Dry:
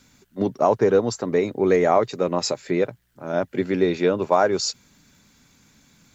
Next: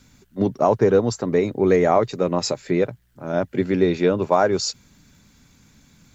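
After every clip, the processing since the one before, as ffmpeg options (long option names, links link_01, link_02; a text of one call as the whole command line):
ffmpeg -i in.wav -af "lowshelf=frequency=160:gain=9" out.wav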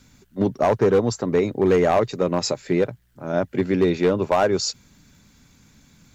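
ffmpeg -i in.wav -af "asoftclip=type=hard:threshold=-11.5dB" out.wav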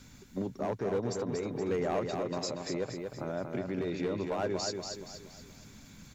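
ffmpeg -i in.wav -filter_complex "[0:a]acompressor=threshold=-24dB:ratio=6,alimiter=level_in=1.5dB:limit=-24dB:level=0:latency=1:release=377,volume=-1.5dB,asplit=2[link_01][link_02];[link_02]aecho=0:1:236|472|708|944|1180|1416:0.562|0.253|0.114|0.0512|0.0231|0.0104[link_03];[link_01][link_03]amix=inputs=2:normalize=0" out.wav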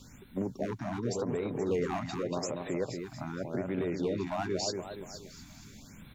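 ffmpeg -i in.wav -af "afftfilt=real='re*(1-between(b*sr/1024,420*pow(6000/420,0.5+0.5*sin(2*PI*0.86*pts/sr))/1.41,420*pow(6000/420,0.5+0.5*sin(2*PI*0.86*pts/sr))*1.41))':imag='im*(1-between(b*sr/1024,420*pow(6000/420,0.5+0.5*sin(2*PI*0.86*pts/sr))/1.41,420*pow(6000/420,0.5+0.5*sin(2*PI*0.86*pts/sr))*1.41))':win_size=1024:overlap=0.75,volume=1.5dB" out.wav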